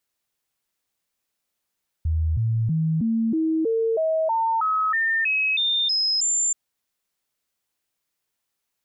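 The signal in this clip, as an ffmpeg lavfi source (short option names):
-f lavfi -i "aevalsrc='0.112*clip(min(mod(t,0.32),0.32-mod(t,0.32))/0.005,0,1)*sin(2*PI*79.9*pow(2,floor(t/0.32)/2)*mod(t,0.32))':d=4.48:s=44100"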